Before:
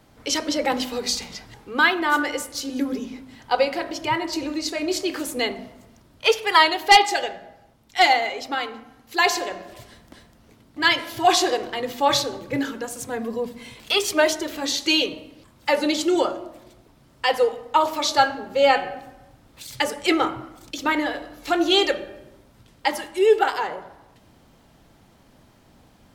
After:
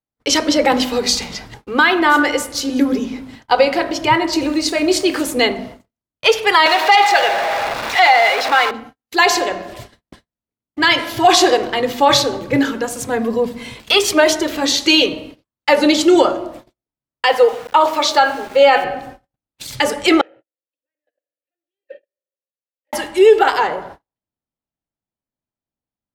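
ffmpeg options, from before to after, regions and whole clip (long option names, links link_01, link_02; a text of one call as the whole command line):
ffmpeg -i in.wav -filter_complex "[0:a]asettb=1/sr,asplit=3[link_01][link_02][link_03];[link_01]atrim=end=4.414[link_04];[link_02]atrim=start=4.41:end=5.21,asetpts=PTS-STARTPTS,afade=type=in:duration=0.004:curve=qsin,afade=type=out:start_time=0.796:duration=0.004:curve=qsin,equalizer=frequency=9000:width=6.3:gain=9,aeval=exprs='val(0)*gte(abs(val(0)),0.00596)':channel_layout=same[link_05];[link_03]atrim=start=5.206[link_06];[link_04][link_05]acrossfade=duration=0.004:curve1=hsin:curve2=qsin[link_07];[link_07][link_06]acrossfade=duration=0.004:curve1=qsin:curve2=hsin,asettb=1/sr,asplit=3[link_08][link_09][link_10];[link_08]atrim=end=6.664[link_11];[link_09]atrim=start=6.66:end=8.71,asetpts=PTS-STARTPTS,afade=type=in:duration=0.004:curve=qsin,afade=type=out:start_time=2.046:duration=0.004:curve=qsin,aeval=exprs='val(0)+0.5*0.1*sgn(val(0))':channel_layout=same,acrossover=split=510 4200:gain=0.0891 1 0.224[link_12][link_13][link_14];[link_12][link_13][link_14]amix=inputs=3:normalize=0,bandreject=frequency=3100:width=12[link_15];[link_10]atrim=start=8.706[link_16];[link_11][link_15]acrossfade=duration=0.004:curve1=hsin:curve2=qsin[link_17];[link_17][link_16]acrossfade=duration=0.004:curve1=qsin:curve2=hsin,asettb=1/sr,asplit=3[link_18][link_19][link_20];[link_18]atrim=end=17.264[link_21];[link_19]atrim=start=17.26:end=18.84,asetpts=PTS-STARTPTS,afade=type=in:duration=0.004:curve=qsin,afade=type=out:start_time=1.576:duration=0.004:curve=qsin,bass=frequency=250:gain=-12,treble=frequency=4000:gain=-4,aeval=exprs='val(0)*gte(abs(val(0)),0.00944)':channel_layout=same[link_22];[link_20]atrim=start=18.836[link_23];[link_21][link_22]acrossfade=duration=0.004:curve1=hsin:curve2=qsin[link_24];[link_24][link_23]acrossfade=duration=0.004:curve1=qsin:curve2=hsin,asettb=1/sr,asplit=3[link_25][link_26][link_27];[link_25]atrim=end=20.214[link_28];[link_26]atrim=start=20.21:end=22.93,asetpts=PTS-STARTPTS,afade=type=in:duration=0.004:curve=qsin,afade=type=out:start_time=2.716:duration=0.004:curve=qsin,volume=21dB,asoftclip=hard,volume=-21dB,acompressor=threshold=-49dB:ratio=2:attack=3.2:release=140:knee=1:detection=peak,asplit=3[link_29][link_30][link_31];[link_29]bandpass=frequency=530:width_type=q:width=8,volume=0dB[link_32];[link_30]bandpass=frequency=1840:width_type=q:width=8,volume=-6dB[link_33];[link_31]bandpass=frequency=2480:width_type=q:width=8,volume=-9dB[link_34];[link_32][link_33][link_34]amix=inputs=3:normalize=0[link_35];[link_27]atrim=start=22.926[link_36];[link_28][link_35]acrossfade=duration=0.004:curve1=hsin:curve2=qsin[link_37];[link_37][link_36]acrossfade=duration=0.004:curve1=qsin:curve2=hsin,agate=range=-48dB:threshold=-44dB:ratio=16:detection=peak,highshelf=frequency=6200:gain=-4.5,alimiter=level_in=10.5dB:limit=-1dB:release=50:level=0:latency=1,volume=-1dB" out.wav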